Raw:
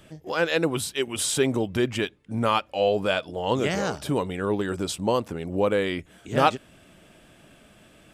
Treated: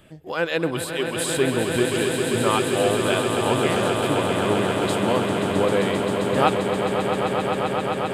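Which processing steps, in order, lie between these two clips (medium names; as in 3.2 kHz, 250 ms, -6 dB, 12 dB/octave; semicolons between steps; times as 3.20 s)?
peaking EQ 5.8 kHz -10.5 dB 0.44 oct; echo with a slow build-up 132 ms, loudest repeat 8, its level -8.5 dB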